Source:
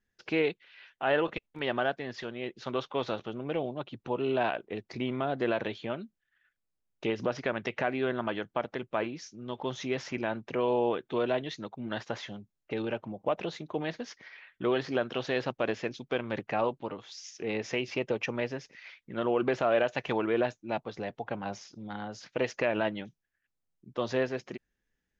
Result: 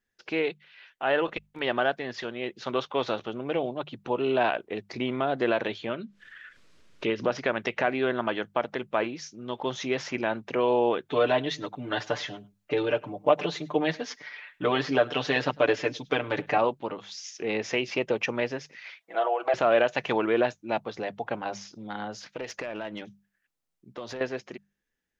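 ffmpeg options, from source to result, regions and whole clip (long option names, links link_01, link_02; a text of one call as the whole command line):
ffmpeg -i in.wav -filter_complex "[0:a]asettb=1/sr,asplit=3[link_01][link_02][link_03];[link_01]atrim=end=5.894[link_04];[link_02]atrim=start=5.89:end=7.24,asetpts=PTS-STARTPTS,afade=type=in:duration=0.004:curve=qsin,afade=type=out:start_time=1.346:duration=0.004:curve=qsin,lowpass=4800,equalizer=frequency=780:width_type=o:width=0.34:gain=-11.5,acompressor=mode=upward:threshold=-33dB:ratio=2.5:attack=3.2:release=140:knee=2.83:detection=peak[link_05];[link_03]atrim=start=7.236[link_06];[link_04][link_05]acrossfade=duration=0.004:curve1=hsin:curve2=qsin[link_07];[link_07][link_06]acrossfade=duration=0.004:curve1=qsin:curve2=hsin,asettb=1/sr,asplit=3[link_08][link_09][link_10];[link_08]atrim=end=11.104[link_11];[link_09]atrim=start=11.1:end=16.58,asetpts=PTS-STARTPTS,afade=type=in:duration=0.004:curve=qsin,afade=type=out:start_time=5.476:duration=0.004:curve=qsin,aecho=1:1:6.8:0.88,atrim=end_sample=241668,aecho=1:1:102:0.0668,atrim=end_sample=241668[link_12];[link_10]atrim=start=16.576[link_13];[link_11][link_12]acrossfade=duration=0.004:curve1=hsin:curve2=qsin[link_14];[link_14][link_13]acrossfade=duration=0.004:curve1=qsin:curve2=hsin,asettb=1/sr,asplit=3[link_15][link_16][link_17];[link_15]atrim=end=19.004[link_18];[link_16]atrim=start=19:end=19.54,asetpts=PTS-STARTPTS,afade=type=in:duration=0.004:curve=qsin,afade=type=out:start_time=0.536:duration=0.004:curve=qsin,aecho=1:1:6.1:0.8,atrim=end_sample=23814,acompressor=threshold=-29dB:ratio=10:attack=3.2:release=140:knee=1:detection=peak,highpass=frequency=690:width_type=q:width=7.5[link_19];[link_17]atrim=start=19.536[link_20];[link_18][link_19]acrossfade=duration=0.004:curve1=hsin:curve2=qsin[link_21];[link_21][link_20]acrossfade=duration=0.004:curve1=qsin:curve2=hsin,asettb=1/sr,asplit=3[link_22][link_23][link_24];[link_22]atrim=end=22.174[link_25];[link_23]atrim=start=22.17:end=24.21,asetpts=PTS-STARTPTS,afade=type=in:duration=0.004:curve=qsin,afade=type=out:start_time=2.036:duration=0.004:curve=qsin,acompressor=threshold=-32dB:ratio=16:attack=3.2:release=140:knee=1:detection=peak,aeval=exprs='(tanh(28.2*val(0)+0.2)-tanh(0.2))/28.2':channel_layout=same[link_26];[link_24]atrim=start=24.206[link_27];[link_25][link_26]acrossfade=duration=0.004:curve1=hsin:curve2=qsin[link_28];[link_28][link_27]acrossfade=duration=0.004:curve1=qsin:curve2=hsin,lowshelf=frequency=190:gain=-7,bandreject=frequency=50:width_type=h:width=6,bandreject=frequency=100:width_type=h:width=6,bandreject=frequency=150:width_type=h:width=6,bandreject=frequency=200:width_type=h:width=6,dynaudnorm=framelen=300:gausssize=9:maxgain=4dB,volume=1dB" out.wav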